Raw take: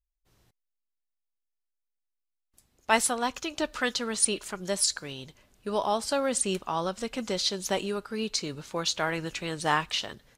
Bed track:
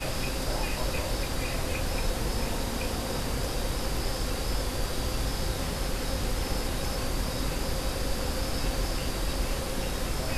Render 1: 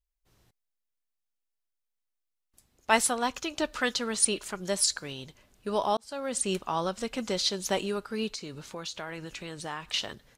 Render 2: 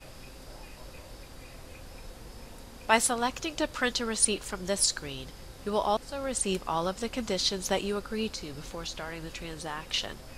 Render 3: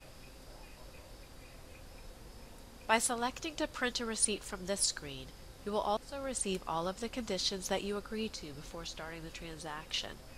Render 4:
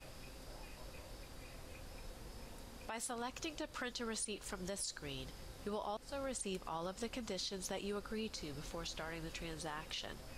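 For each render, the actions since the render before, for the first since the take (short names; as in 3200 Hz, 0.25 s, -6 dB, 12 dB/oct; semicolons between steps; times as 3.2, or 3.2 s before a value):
5.97–6.53 fade in; 8.33–9.94 compressor 2.5:1, threshold -38 dBFS
add bed track -16.5 dB
gain -6 dB
compressor 2.5:1, threshold -39 dBFS, peak gain reduction 11 dB; limiter -32 dBFS, peak gain reduction 9 dB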